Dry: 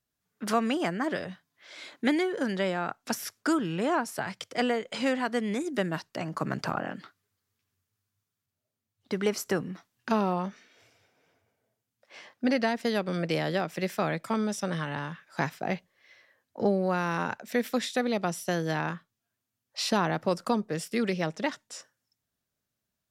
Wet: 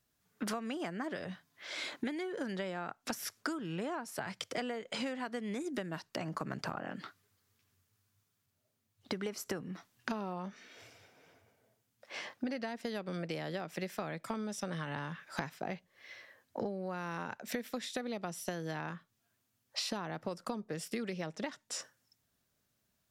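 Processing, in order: compression 16:1, threshold -40 dBFS, peak gain reduction 21 dB; trim +5.5 dB

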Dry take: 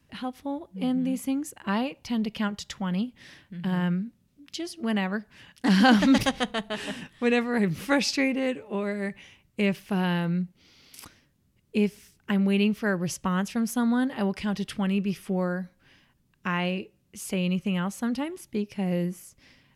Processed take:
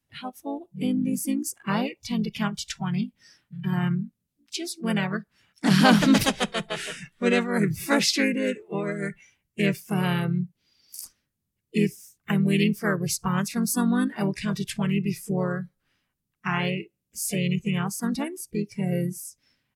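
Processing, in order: treble shelf 7.1 kHz +11.5 dB; harmony voices -4 st -5 dB, +3 st -14 dB; spectral noise reduction 16 dB

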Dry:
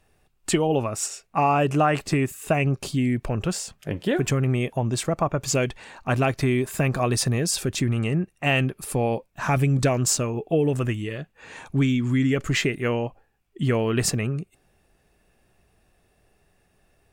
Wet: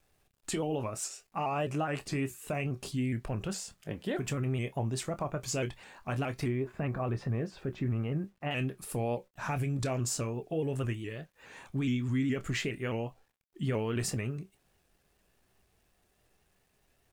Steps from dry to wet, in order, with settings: 6.48–8.51 s: low-pass 1.7 kHz 12 dB/octave; peak limiter -15 dBFS, peak gain reduction 5.5 dB; feedback comb 64 Hz, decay 0.17 s, harmonics all, mix 50%; bit crusher 11-bit; doubling 26 ms -12 dB; vibrato with a chosen wave saw up 4.8 Hz, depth 100 cents; trim -6.5 dB

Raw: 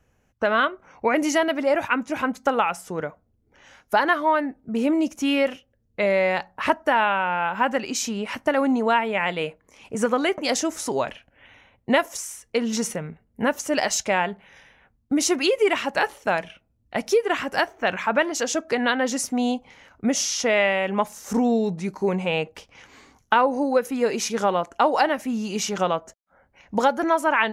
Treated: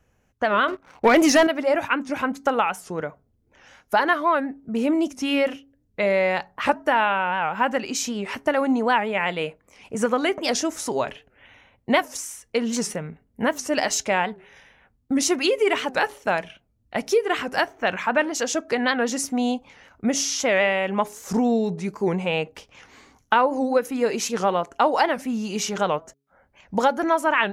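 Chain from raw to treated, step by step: de-hum 138.2 Hz, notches 3; 0.68–1.47 s: waveshaping leveller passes 2; warped record 78 rpm, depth 160 cents

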